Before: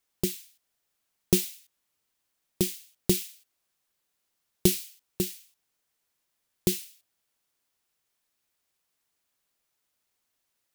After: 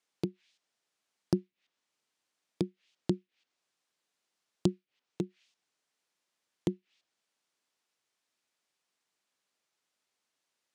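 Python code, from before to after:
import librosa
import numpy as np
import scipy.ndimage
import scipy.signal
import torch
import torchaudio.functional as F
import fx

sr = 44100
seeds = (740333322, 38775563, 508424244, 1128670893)

y = scipy.signal.sosfilt(scipy.signal.butter(2, 7500.0, 'lowpass', fs=sr, output='sos'), x)
y = fx.env_lowpass_down(y, sr, base_hz=310.0, full_db=-28.0)
y = scipy.signal.sosfilt(scipy.signal.butter(2, 180.0, 'highpass', fs=sr, output='sos'), y)
y = y * librosa.db_to_amplitude(-1.0)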